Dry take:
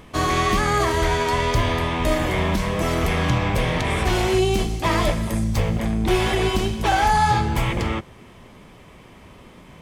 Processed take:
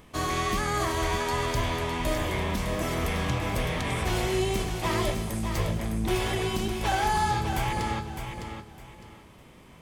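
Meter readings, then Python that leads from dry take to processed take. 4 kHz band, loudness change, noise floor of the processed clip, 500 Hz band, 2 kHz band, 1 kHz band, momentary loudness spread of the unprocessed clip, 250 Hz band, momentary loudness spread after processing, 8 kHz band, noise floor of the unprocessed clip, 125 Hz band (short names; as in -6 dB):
-6.0 dB, -7.0 dB, -51 dBFS, -7.0 dB, -7.0 dB, -7.0 dB, 4 LU, -7.5 dB, 8 LU, -3.5 dB, -46 dBFS, -7.0 dB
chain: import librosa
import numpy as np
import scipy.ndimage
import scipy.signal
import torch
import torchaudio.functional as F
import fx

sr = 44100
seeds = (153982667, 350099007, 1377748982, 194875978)

p1 = fx.high_shelf(x, sr, hz=7100.0, db=7.0)
p2 = p1 + fx.echo_feedback(p1, sr, ms=608, feedback_pct=25, wet_db=-7, dry=0)
y = F.gain(torch.from_numpy(p2), -8.0).numpy()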